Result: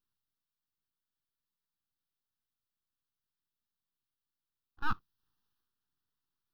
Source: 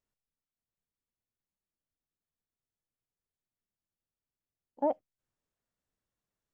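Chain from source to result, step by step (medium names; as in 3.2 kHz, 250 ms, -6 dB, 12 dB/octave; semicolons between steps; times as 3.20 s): full-wave rectifier; transient shaper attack -6 dB, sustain +6 dB; static phaser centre 2.2 kHz, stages 6; trim +3.5 dB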